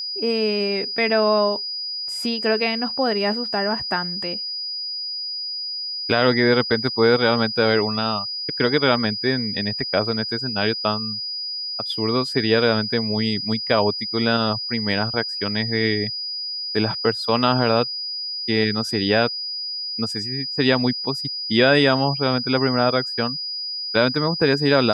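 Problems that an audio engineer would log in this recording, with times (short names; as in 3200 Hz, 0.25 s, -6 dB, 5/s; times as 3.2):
tone 4900 Hz -26 dBFS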